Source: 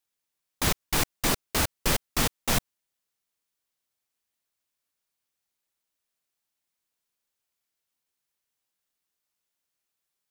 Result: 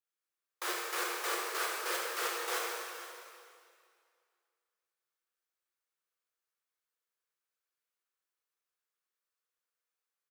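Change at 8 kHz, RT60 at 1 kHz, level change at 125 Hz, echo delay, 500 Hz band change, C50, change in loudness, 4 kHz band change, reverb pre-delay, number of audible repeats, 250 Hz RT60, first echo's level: −9.5 dB, 2.2 s, below −40 dB, 466 ms, −5.0 dB, −1.0 dB, −8.5 dB, −8.5 dB, 6 ms, 1, 2.2 s, −15.0 dB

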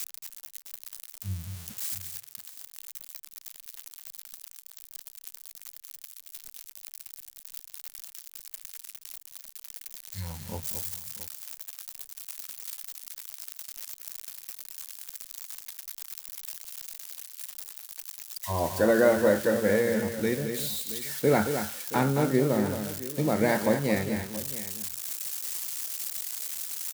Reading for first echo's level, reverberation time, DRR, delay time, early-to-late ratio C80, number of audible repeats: −8.0 dB, no reverb audible, no reverb audible, 222 ms, no reverb audible, 2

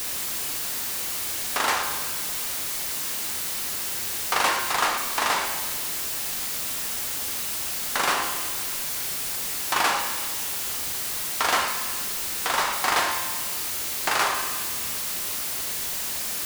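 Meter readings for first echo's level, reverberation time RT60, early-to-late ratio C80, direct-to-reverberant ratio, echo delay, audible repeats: no echo audible, 1.5 s, 7.5 dB, 3.0 dB, no echo audible, no echo audible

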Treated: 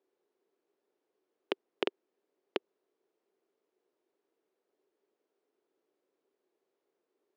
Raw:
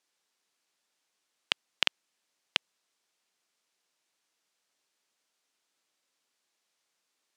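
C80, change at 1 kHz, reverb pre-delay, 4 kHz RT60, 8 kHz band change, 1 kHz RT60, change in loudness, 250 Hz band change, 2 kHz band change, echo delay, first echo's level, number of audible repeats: no reverb audible, −2.0 dB, no reverb audible, no reverb audible, below −20 dB, no reverb audible, −7.5 dB, +11.0 dB, −10.5 dB, no echo audible, no echo audible, no echo audible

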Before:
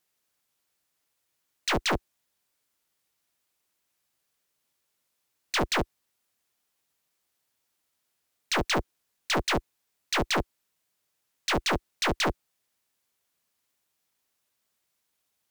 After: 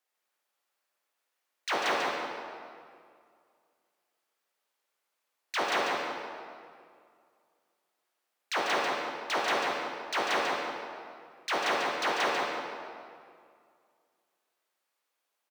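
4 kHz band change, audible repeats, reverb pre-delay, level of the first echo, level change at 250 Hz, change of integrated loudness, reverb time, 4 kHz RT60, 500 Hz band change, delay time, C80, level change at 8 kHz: −3.5 dB, 1, 36 ms, −4.5 dB, −7.5 dB, −2.5 dB, 2.2 s, 1.5 s, 0.0 dB, 144 ms, −0.5 dB, −6.0 dB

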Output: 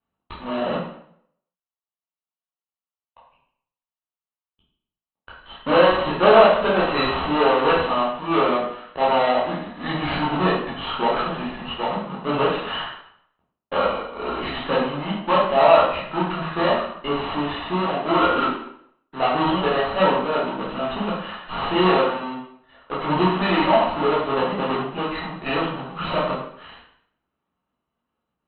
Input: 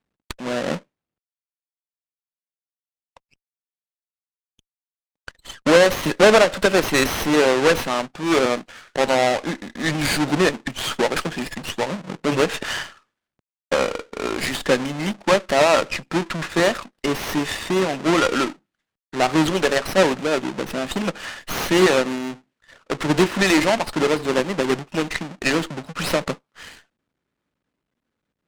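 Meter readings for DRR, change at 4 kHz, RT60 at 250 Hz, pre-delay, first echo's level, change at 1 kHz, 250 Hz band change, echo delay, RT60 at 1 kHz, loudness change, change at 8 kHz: −7.5 dB, −3.0 dB, 0.65 s, 10 ms, no echo audible, +4.0 dB, −2.5 dB, no echo audible, 0.65 s, −0.5 dB, below −40 dB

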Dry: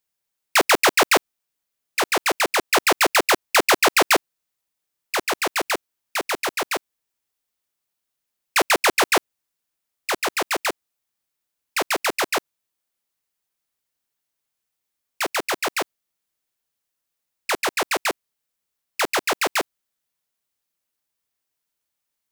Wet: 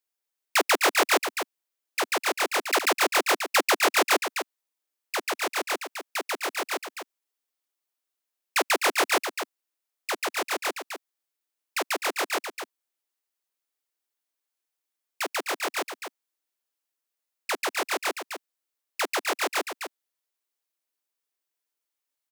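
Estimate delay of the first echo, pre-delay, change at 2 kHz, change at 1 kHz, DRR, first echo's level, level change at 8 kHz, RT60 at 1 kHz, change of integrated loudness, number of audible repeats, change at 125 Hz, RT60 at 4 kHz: 255 ms, no reverb audible, −5.0 dB, −5.0 dB, no reverb audible, −8.0 dB, −5.0 dB, no reverb audible, −5.0 dB, 1, below −30 dB, no reverb audible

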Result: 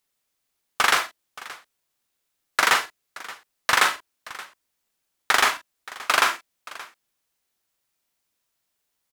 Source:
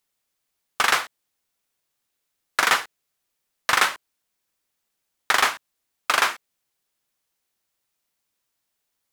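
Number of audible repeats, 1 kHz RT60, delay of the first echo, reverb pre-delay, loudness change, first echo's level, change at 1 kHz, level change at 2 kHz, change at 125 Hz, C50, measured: 2, no reverb audible, 41 ms, no reverb audible, +0.5 dB, −8.0 dB, +0.5 dB, +0.5 dB, can't be measured, no reverb audible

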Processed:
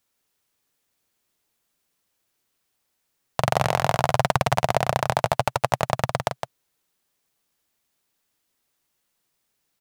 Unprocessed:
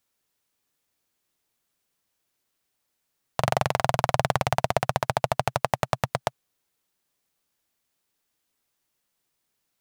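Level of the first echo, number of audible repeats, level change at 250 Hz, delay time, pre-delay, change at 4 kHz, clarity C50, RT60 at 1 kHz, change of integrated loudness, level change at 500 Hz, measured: −7.0 dB, 1, +3.0 dB, 162 ms, no reverb audible, +3.0 dB, no reverb audible, no reverb audible, +3.0 dB, +2.5 dB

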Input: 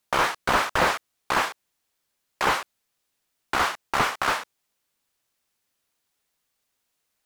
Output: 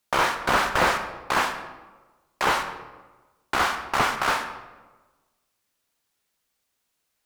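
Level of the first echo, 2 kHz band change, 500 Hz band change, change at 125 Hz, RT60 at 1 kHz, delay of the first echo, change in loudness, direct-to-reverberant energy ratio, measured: no echo audible, +1.0 dB, +1.0 dB, +1.0 dB, 1.2 s, no echo audible, +0.5 dB, 7.0 dB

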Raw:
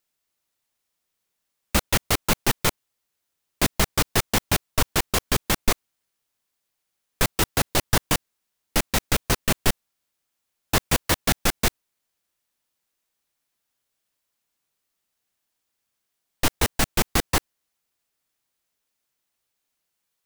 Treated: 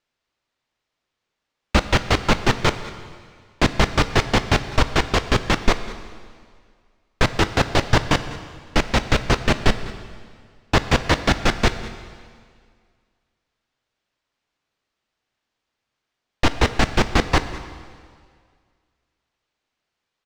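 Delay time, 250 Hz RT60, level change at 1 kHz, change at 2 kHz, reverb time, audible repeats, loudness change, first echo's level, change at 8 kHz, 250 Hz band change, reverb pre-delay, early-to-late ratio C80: 199 ms, 2.0 s, +5.5 dB, +5.0 dB, 2.0 s, 1, +3.0 dB, −18.5 dB, −7.0 dB, +5.5 dB, 5 ms, 12.0 dB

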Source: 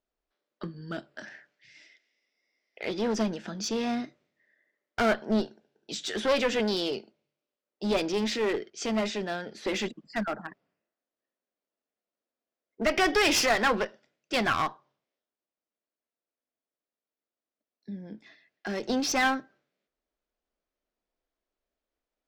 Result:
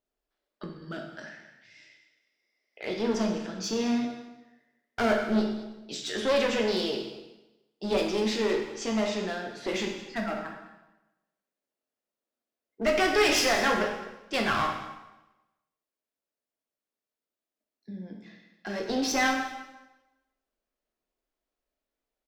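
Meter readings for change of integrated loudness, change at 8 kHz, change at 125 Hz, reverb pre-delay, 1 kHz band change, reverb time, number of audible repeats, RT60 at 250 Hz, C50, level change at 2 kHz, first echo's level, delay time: +0.5 dB, −0.5 dB, 0.0 dB, 5 ms, 0.0 dB, 1.0 s, 1, 1.0 s, 4.5 dB, 0.0 dB, −17.0 dB, 208 ms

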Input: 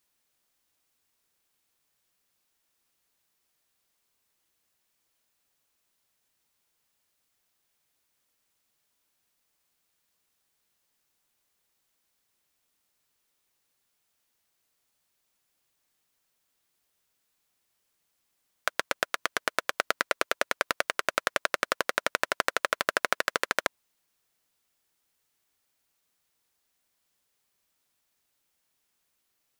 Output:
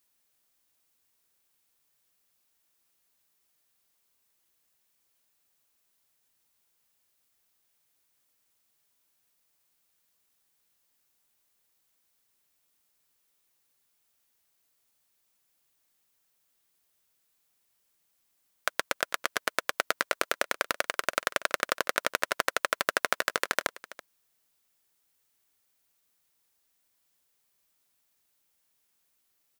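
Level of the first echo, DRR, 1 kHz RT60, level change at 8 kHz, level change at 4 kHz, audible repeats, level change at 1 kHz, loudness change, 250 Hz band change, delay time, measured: −18.0 dB, no reverb audible, no reverb audible, +1.5 dB, 0.0 dB, 1, −1.0 dB, −0.5 dB, −1.0 dB, 330 ms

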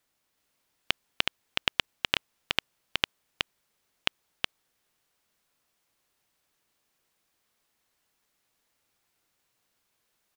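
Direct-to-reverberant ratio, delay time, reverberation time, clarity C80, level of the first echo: no reverb audible, 370 ms, no reverb audible, no reverb audible, −3.5 dB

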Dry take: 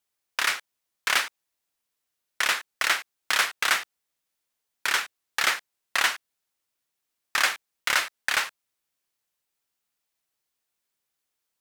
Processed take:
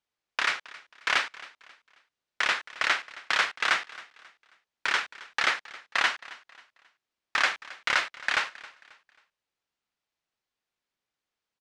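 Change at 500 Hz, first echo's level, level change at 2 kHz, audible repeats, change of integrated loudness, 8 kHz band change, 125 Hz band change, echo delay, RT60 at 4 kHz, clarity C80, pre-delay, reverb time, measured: −0.5 dB, −19.5 dB, −1.0 dB, 2, −2.0 dB, −10.0 dB, can't be measured, 269 ms, no reverb audible, no reverb audible, no reverb audible, no reverb audible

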